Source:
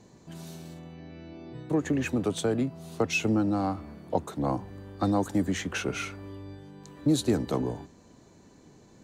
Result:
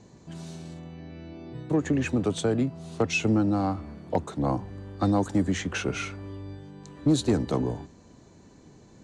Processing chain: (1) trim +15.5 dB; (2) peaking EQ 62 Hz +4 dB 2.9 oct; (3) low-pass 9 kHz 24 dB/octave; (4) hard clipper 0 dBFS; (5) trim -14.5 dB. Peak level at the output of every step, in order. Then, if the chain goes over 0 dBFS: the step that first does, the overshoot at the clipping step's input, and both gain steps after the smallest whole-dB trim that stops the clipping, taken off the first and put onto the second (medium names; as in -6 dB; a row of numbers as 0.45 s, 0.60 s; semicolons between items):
+3.0 dBFS, +4.0 dBFS, +4.0 dBFS, 0.0 dBFS, -14.5 dBFS; step 1, 4.0 dB; step 1 +11.5 dB, step 5 -10.5 dB